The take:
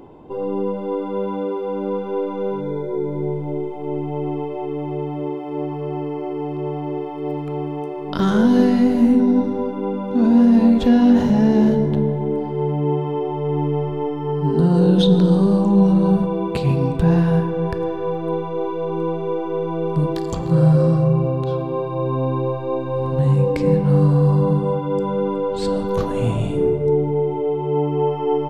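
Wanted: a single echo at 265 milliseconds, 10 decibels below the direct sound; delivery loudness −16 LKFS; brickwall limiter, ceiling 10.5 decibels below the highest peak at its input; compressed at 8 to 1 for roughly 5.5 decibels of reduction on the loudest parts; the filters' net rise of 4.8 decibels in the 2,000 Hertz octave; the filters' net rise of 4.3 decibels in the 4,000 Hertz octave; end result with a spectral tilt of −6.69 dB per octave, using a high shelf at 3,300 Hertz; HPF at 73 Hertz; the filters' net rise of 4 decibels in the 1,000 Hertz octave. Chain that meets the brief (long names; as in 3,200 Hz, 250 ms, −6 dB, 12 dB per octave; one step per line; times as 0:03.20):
high-pass filter 73 Hz
parametric band 1,000 Hz +4 dB
parametric band 2,000 Hz +5 dB
high-shelf EQ 3,300 Hz −5 dB
parametric band 4,000 Hz +6.5 dB
downward compressor 8 to 1, threshold −15 dBFS
brickwall limiter −17 dBFS
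single-tap delay 265 ms −10 dB
level +8.5 dB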